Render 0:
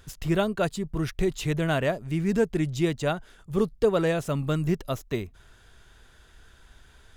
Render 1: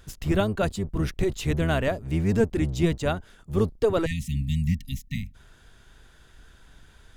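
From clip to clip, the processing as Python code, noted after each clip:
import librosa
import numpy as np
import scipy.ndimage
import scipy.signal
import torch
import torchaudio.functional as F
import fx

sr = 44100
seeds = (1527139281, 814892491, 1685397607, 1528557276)

y = fx.octave_divider(x, sr, octaves=1, level_db=-1.0)
y = fx.spec_erase(y, sr, start_s=4.06, length_s=1.29, low_hz=260.0, high_hz=1800.0)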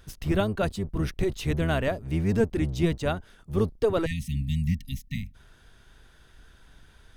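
y = fx.notch(x, sr, hz=7200.0, q=7.4)
y = y * librosa.db_to_amplitude(-1.5)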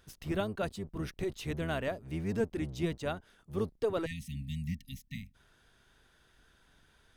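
y = fx.low_shelf(x, sr, hz=96.0, db=-10.0)
y = y * librosa.db_to_amplitude(-7.0)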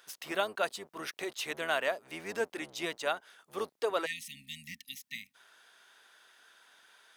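y = scipy.signal.sosfilt(scipy.signal.butter(2, 710.0, 'highpass', fs=sr, output='sos'), x)
y = y * librosa.db_to_amplitude(7.5)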